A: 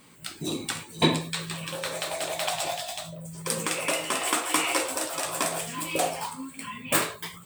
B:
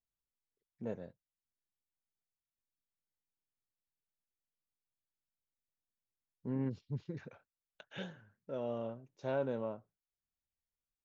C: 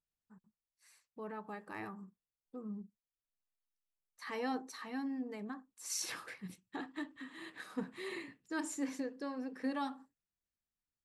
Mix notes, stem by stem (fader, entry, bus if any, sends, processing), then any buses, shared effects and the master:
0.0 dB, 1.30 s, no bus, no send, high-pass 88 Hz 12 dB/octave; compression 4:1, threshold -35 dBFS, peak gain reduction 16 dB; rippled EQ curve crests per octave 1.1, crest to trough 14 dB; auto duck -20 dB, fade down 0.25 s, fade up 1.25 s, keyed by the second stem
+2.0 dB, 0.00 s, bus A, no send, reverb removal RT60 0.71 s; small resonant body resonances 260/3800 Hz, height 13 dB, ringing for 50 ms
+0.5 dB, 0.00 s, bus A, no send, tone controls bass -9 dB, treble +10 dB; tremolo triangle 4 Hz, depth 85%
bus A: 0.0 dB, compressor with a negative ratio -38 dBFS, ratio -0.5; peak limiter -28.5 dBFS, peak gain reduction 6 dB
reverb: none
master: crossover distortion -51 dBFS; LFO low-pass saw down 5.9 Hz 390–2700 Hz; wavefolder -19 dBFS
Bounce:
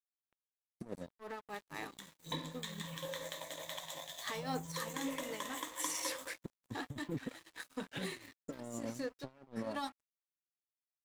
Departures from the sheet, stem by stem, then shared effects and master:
stem A 0.0 dB -> -7.0 dB; master: missing LFO low-pass saw down 5.9 Hz 390–2700 Hz

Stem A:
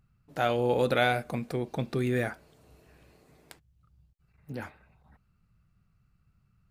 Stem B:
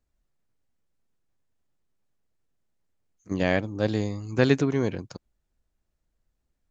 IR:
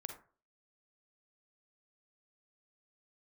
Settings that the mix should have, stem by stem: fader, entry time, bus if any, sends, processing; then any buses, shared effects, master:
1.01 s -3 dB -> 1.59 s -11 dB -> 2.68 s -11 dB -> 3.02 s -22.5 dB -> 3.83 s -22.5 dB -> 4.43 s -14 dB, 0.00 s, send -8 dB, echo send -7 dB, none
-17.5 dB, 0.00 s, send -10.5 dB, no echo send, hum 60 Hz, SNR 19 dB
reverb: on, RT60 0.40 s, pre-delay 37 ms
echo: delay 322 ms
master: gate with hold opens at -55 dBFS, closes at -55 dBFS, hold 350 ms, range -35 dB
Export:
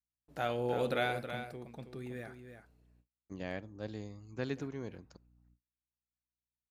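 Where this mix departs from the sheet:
stem A -3.0 dB -> -9.5 dB; stem B: send -10.5 dB -> -16.5 dB

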